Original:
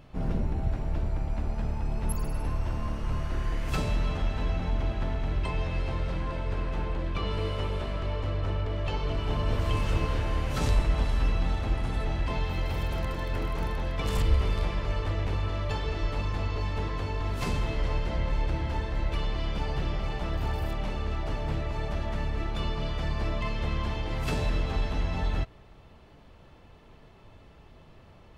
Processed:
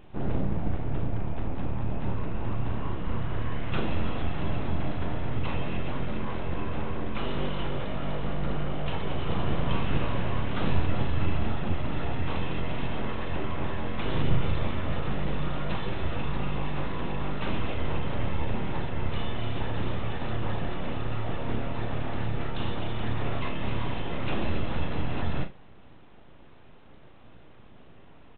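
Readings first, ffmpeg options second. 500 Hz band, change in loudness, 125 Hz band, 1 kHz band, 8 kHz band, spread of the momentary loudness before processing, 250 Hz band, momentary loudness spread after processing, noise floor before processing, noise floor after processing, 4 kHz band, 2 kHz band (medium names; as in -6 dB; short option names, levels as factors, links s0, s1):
+0.5 dB, -1.0 dB, -1.0 dB, +1.0 dB, under -30 dB, 4 LU, +3.5 dB, 4 LU, -53 dBFS, -48 dBFS, -0.5 dB, +1.0 dB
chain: -af "equalizer=f=180:w=0.67:g=4.5,aresample=8000,aeval=exprs='abs(val(0))':c=same,aresample=44100,aecho=1:1:36|70:0.376|0.15"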